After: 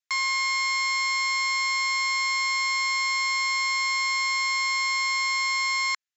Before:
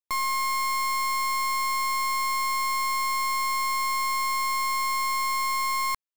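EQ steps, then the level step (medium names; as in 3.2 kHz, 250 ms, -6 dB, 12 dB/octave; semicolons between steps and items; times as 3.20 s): resonant high-pass 1.7 kHz, resonance Q 2.2; Chebyshev low-pass 7.4 kHz, order 10; treble shelf 4.3 kHz +9.5 dB; 0.0 dB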